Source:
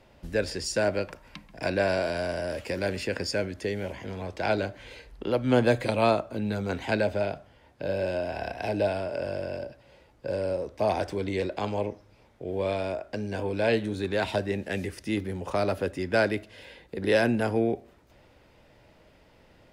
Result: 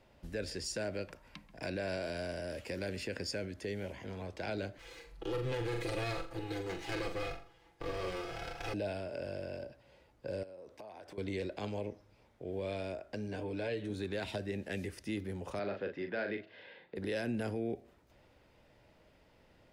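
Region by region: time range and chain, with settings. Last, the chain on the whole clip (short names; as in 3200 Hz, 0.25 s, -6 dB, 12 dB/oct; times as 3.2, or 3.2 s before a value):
4.78–8.74 minimum comb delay 2.4 ms + comb 6 ms, depth 73% + flutter echo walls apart 7.3 m, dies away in 0.32 s
10.43–11.18 HPF 230 Hz 6 dB/oct + dynamic EQ 6400 Hz, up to -4 dB, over -50 dBFS, Q 0.82 + compressor 10:1, threshold -39 dBFS
13.28–13.9 high shelf 5800 Hz -6 dB + comb 6.8 ms, depth 50% + compressor 1.5:1, threshold -28 dBFS
15.59–16.96 speaker cabinet 190–3800 Hz, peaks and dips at 270 Hz -4 dB, 1700 Hz +4 dB, 2800 Hz -3 dB + doubler 40 ms -7 dB
whole clip: dynamic EQ 960 Hz, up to -7 dB, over -41 dBFS, Q 1.3; limiter -20.5 dBFS; gain -7 dB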